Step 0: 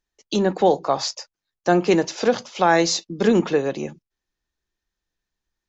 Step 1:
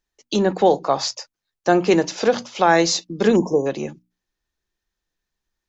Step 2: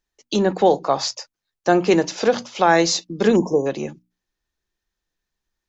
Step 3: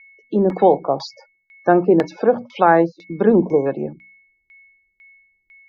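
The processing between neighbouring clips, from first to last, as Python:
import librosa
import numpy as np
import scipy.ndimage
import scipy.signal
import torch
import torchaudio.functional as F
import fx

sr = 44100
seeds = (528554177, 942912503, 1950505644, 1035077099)

y1 = fx.spec_erase(x, sr, start_s=3.36, length_s=0.3, low_hz=1100.0, high_hz=5100.0)
y1 = fx.hum_notches(y1, sr, base_hz=60, count=5)
y1 = y1 * librosa.db_to_amplitude(1.5)
y2 = y1
y3 = y2 + 10.0 ** (-47.0 / 20.0) * np.sin(2.0 * np.pi * 2200.0 * np.arange(len(y2)) / sr)
y3 = fx.spec_topn(y3, sr, count=64)
y3 = fx.filter_lfo_lowpass(y3, sr, shape='saw_down', hz=2.0, low_hz=440.0, high_hz=3400.0, q=0.9)
y3 = y3 * librosa.db_to_amplitude(2.0)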